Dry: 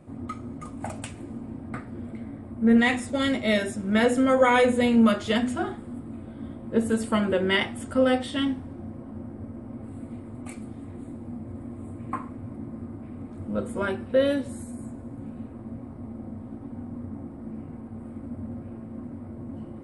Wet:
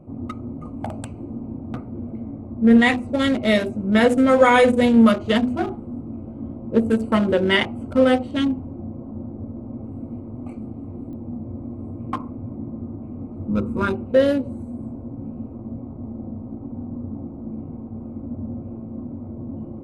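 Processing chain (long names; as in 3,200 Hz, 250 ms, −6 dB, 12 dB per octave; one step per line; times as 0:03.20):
adaptive Wiener filter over 25 samples
0:13.49–0:13.93: comb filter 0.8 ms, depth 63%
digital clicks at 0:11.13, −39 dBFS
level +5.5 dB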